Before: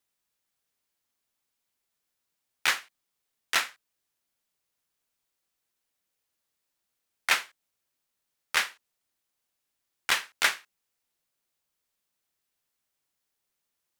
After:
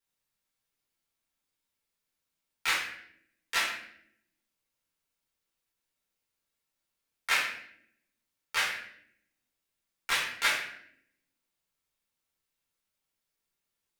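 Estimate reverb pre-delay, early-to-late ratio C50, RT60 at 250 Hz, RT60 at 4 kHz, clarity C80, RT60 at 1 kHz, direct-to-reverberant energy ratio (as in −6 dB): 4 ms, 3.5 dB, 1.1 s, 0.55 s, 7.0 dB, 0.60 s, −6.0 dB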